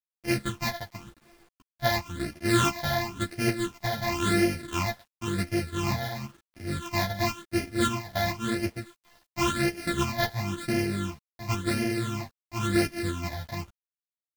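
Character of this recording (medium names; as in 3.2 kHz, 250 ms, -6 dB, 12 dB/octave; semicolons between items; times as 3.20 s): a buzz of ramps at a fixed pitch in blocks of 128 samples; phasing stages 8, 0.95 Hz, lowest notch 350–1100 Hz; a quantiser's noise floor 10-bit, dither none; a shimmering, thickened sound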